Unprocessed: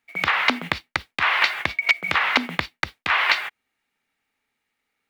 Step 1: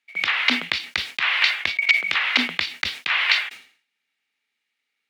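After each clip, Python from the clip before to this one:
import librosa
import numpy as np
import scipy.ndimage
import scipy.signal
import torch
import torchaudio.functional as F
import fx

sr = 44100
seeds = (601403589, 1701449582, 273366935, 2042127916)

y = fx.weighting(x, sr, curve='D')
y = fx.sustainer(y, sr, db_per_s=120.0)
y = F.gain(torch.from_numpy(y), -8.5).numpy()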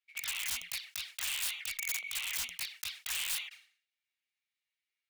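y = fx.env_flanger(x, sr, rest_ms=8.9, full_db=-19.0)
y = (np.mod(10.0 ** (20.0 / 20.0) * y + 1.0, 2.0) - 1.0) / 10.0 ** (20.0 / 20.0)
y = fx.tone_stack(y, sr, knobs='10-0-10')
y = F.gain(torch.from_numpy(y), -7.0).numpy()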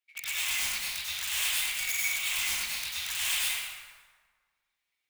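y = fx.rev_plate(x, sr, seeds[0], rt60_s=1.6, hf_ratio=0.6, predelay_ms=80, drr_db=-7.0)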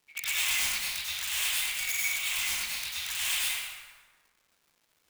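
y = fx.rider(x, sr, range_db=10, speed_s=2.0)
y = fx.dmg_crackle(y, sr, seeds[1], per_s=540.0, level_db=-56.0)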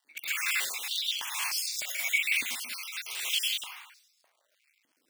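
y = fx.spec_dropout(x, sr, seeds[2], share_pct=37)
y = fx.filter_held_highpass(y, sr, hz=3.3, low_hz=270.0, high_hz=5100.0)
y = F.gain(torch.from_numpy(y), -2.0).numpy()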